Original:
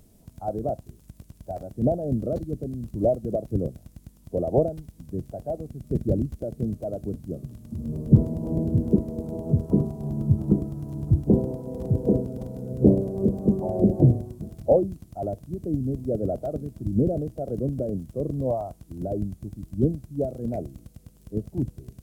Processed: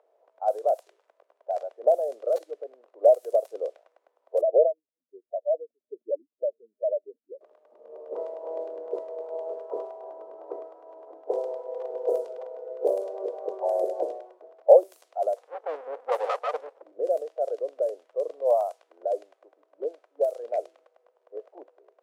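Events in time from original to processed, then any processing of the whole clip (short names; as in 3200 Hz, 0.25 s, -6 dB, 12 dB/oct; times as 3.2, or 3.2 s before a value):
4.41–7.41 spectral contrast raised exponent 2.6
15.36–16.82 minimum comb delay 4 ms
whole clip: steep high-pass 480 Hz 48 dB/oct; low-pass opened by the level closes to 910 Hz, open at -26 dBFS; gain +5.5 dB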